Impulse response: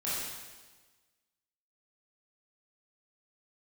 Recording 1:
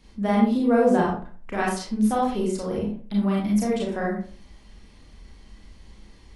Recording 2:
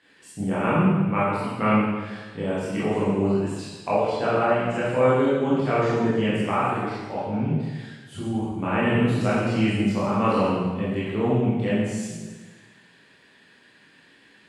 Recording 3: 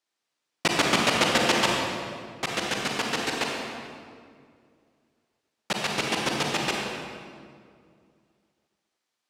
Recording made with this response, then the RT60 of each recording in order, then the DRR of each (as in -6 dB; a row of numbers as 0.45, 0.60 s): 2; 0.40, 1.3, 2.2 s; -4.5, -10.0, -1.5 dB